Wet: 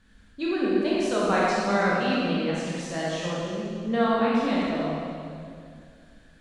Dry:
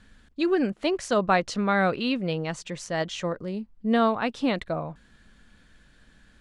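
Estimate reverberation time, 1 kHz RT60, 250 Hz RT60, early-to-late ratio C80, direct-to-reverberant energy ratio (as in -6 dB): 2.3 s, 2.2 s, 2.7 s, -1.0 dB, -6.5 dB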